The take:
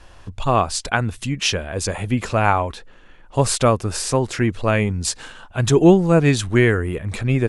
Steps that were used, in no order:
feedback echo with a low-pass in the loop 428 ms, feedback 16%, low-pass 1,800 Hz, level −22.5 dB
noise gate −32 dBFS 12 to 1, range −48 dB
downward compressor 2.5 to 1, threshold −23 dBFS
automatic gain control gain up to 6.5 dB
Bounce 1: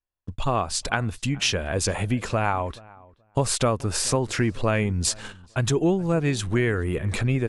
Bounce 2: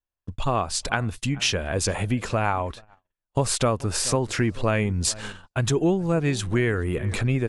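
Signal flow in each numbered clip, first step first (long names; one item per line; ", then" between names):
automatic gain control, then downward compressor, then noise gate, then feedback echo with a low-pass in the loop
automatic gain control, then feedback echo with a low-pass in the loop, then downward compressor, then noise gate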